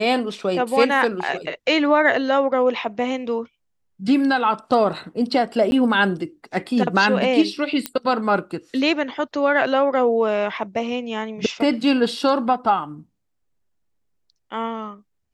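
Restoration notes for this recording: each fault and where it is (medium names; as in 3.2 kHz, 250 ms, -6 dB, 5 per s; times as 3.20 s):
5.71–5.72 s: dropout 11 ms
7.86 s: pop -7 dBFS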